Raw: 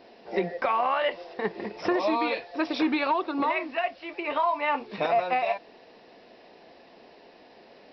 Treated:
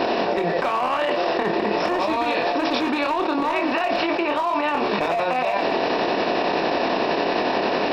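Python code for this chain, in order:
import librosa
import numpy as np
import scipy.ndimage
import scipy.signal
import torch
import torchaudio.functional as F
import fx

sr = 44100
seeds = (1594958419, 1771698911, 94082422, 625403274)

y = fx.bin_compress(x, sr, power=0.6)
y = fx.notch(y, sr, hz=2100.0, q=9.7)
y = np.clip(y, -10.0 ** (-17.0 / 20.0), 10.0 ** (-17.0 / 20.0))
y = fx.tremolo_shape(y, sr, shape='triangle', hz=11.0, depth_pct=90)
y = fx.doubler(y, sr, ms=24.0, db=-10.5)
y = fx.echo_feedback(y, sr, ms=111, feedback_pct=53, wet_db=-23.5)
y = fx.env_flatten(y, sr, amount_pct=100)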